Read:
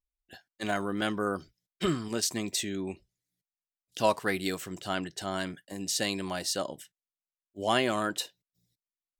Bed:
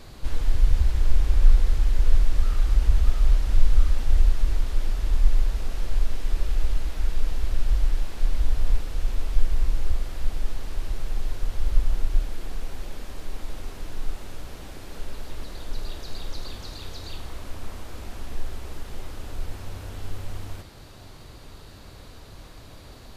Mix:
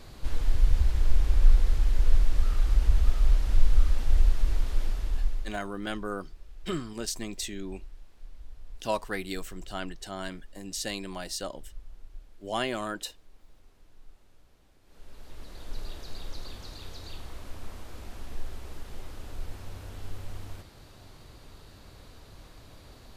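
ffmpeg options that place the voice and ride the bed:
-filter_complex "[0:a]adelay=4850,volume=0.631[s0];[1:a]volume=5.62,afade=t=out:st=4.81:d=0.8:silence=0.0944061,afade=t=in:st=14.83:d=0.95:silence=0.125893[s1];[s0][s1]amix=inputs=2:normalize=0"

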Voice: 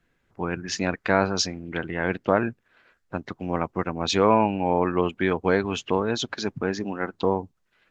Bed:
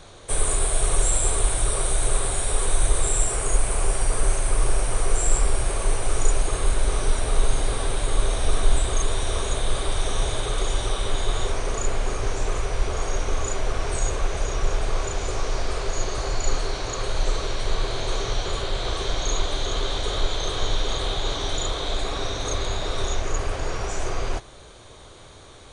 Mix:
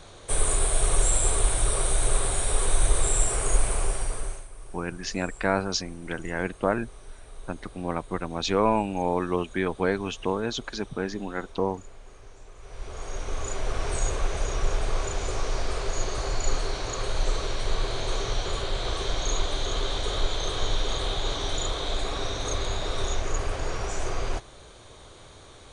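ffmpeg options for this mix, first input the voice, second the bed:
-filter_complex "[0:a]adelay=4350,volume=0.668[s0];[1:a]volume=8.91,afade=t=out:st=3.63:d=0.85:silence=0.0841395,afade=t=in:st=12.57:d=1.3:silence=0.0944061[s1];[s0][s1]amix=inputs=2:normalize=0"

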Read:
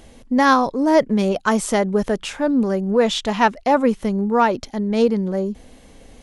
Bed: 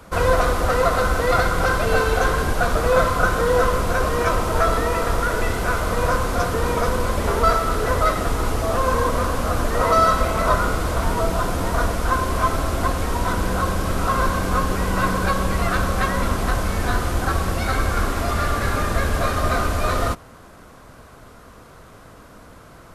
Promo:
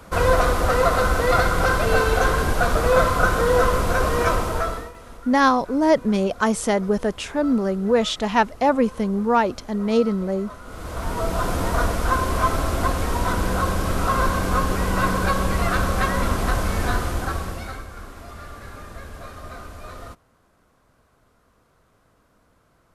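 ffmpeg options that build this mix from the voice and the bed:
-filter_complex "[0:a]adelay=4950,volume=0.794[s0];[1:a]volume=11.9,afade=t=out:st=4.29:d=0.64:silence=0.0794328,afade=t=in:st=10.64:d=0.88:silence=0.0841395,afade=t=out:st=16.83:d=1.03:silence=0.149624[s1];[s0][s1]amix=inputs=2:normalize=0"

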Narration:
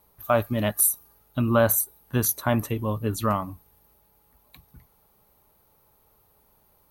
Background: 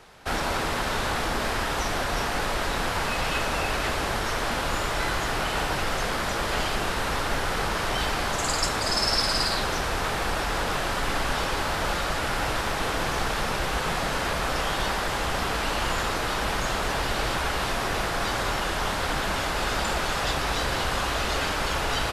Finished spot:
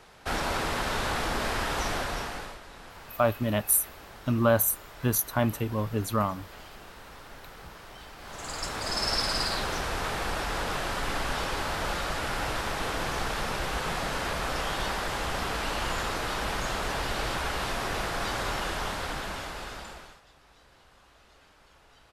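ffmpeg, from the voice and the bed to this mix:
-filter_complex "[0:a]adelay=2900,volume=0.75[s0];[1:a]volume=4.73,afade=t=out:st=1.9:d=0.7:silence=0.133352,afade=t=in:st=8.18:d=0.93:silence=0.158489,afade=t=out:st=18.67:d=1.54:silence=0.0398107[s1];[s0][s1]amix=inputs=2:normalize=0"

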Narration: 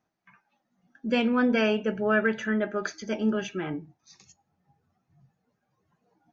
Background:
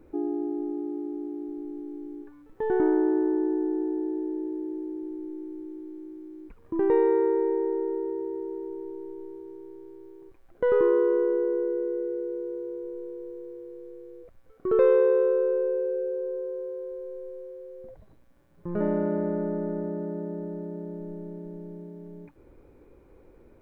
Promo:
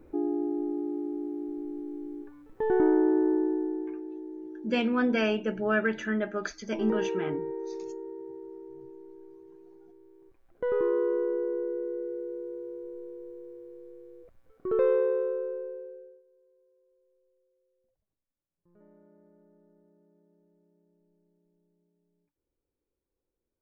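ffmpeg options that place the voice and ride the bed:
-filter_complex "[0:a]adelay=3600,volume=0.75[s0];[1:a]volume=1.78,afade=t=out:st=3.32:d=0.68:silence=0.334965,afade=t=in:st=10.06:d=0.99:silence=0.562341,afade=t=out:st=14.92:d=1.31:silence=0.0375837[s1];[s0][s1]amix=inputs=2:normalize=0"

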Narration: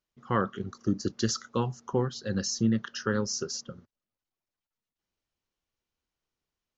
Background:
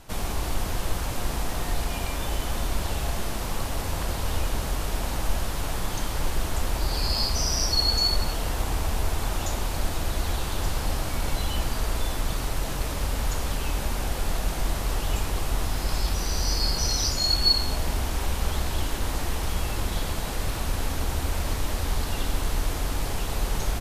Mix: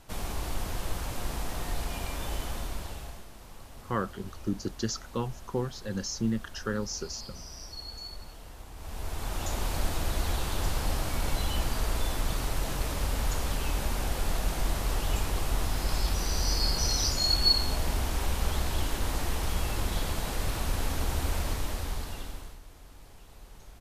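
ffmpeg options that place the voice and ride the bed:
-filter_complex "[0:a]adelay=3600,volume=0.668[s0];[1:a]volume=3.55,afade=t=out:st=2.38:d=0.88:silence=0.211349,afade=t=in:st=8.75:d=0.93:silence=0.149624,afade=t=out:st=21.33:d=1.26:silence=0.0891251[s1];[s0][s1]amix=inputs=2:normalize=0"

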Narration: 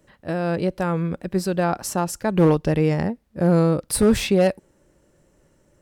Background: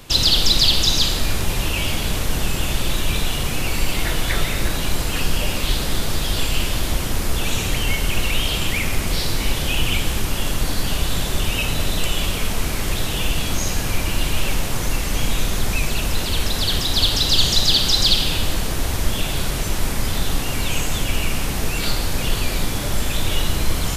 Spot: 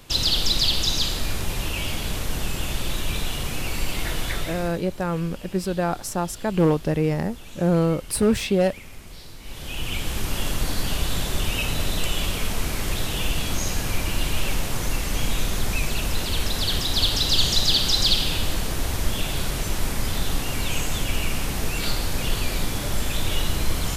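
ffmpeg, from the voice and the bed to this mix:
-filter_complex "[0:a]adelay=4200,volume=0.75[s0];[1:a]volume=3.76,afade=t=out:st=4.25:d=0.57:silence=0.177828,afade=t=in:st=9.42:d=0.94:silence=0.141254[s1];[s0][s1]amix=inputs=2:normalize=0"

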